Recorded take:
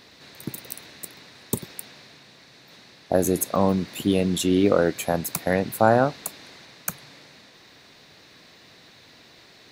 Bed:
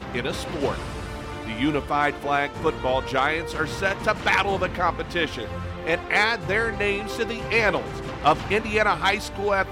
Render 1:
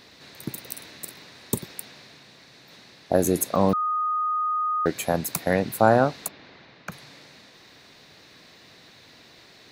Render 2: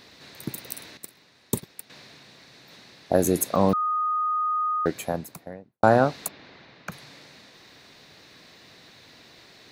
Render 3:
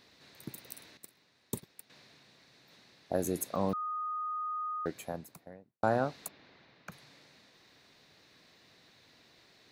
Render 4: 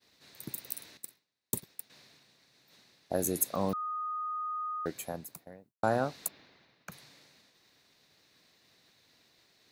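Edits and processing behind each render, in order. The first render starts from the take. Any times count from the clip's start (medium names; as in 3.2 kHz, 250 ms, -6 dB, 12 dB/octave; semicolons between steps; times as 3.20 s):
0.72–1.58 s: doubling 47 ms -8 dB; 3.73–4.86 s: bleep 1.24 kHz -22 dBFS; 6.28–6.92 s: distance through air 230 m
0.97–1.90 s: gate -35 dBFS, range -11 dB; 4.63–5.83 s: studio fade out
trim -11 dB
expander -56 dBFS; treble shelf 6.1 kHz +10.5 dB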